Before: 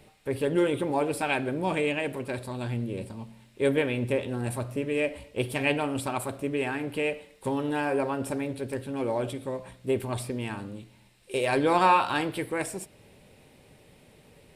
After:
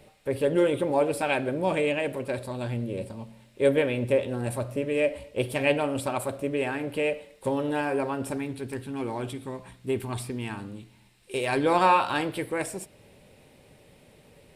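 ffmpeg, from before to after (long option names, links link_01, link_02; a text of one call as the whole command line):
ffmpeg -i in.wav -af "asetnsamples=nb_out_samples=441:pad=0,asendcmd='7.81 equalizer g -1.5;8.37 equalizer g -11.5;10.46 equalizer g -5.5;11.66 equalizer g 3',equalizer=frequency=560:width_type=o:width=0.33:gain=7" out.wav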